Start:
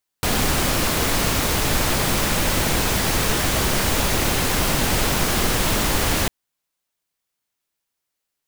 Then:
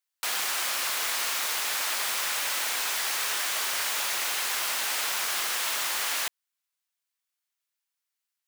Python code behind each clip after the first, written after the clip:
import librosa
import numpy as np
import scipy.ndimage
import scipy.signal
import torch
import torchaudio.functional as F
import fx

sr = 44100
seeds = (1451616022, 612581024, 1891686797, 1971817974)

y = scipy.signal.sosfilt(scipy.signal.butter(2, 1100.0, 'highpass', fs=sr, output='sos'), x)
y = F.gain(torch.from_numpy(y), -5.0).numpy()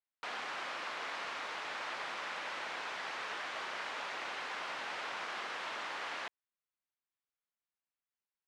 y = fx.spacing_loss(x, sr, db_at_10k=35)
y = F.gain(torch.from_numpy(y), -2.0).numpy()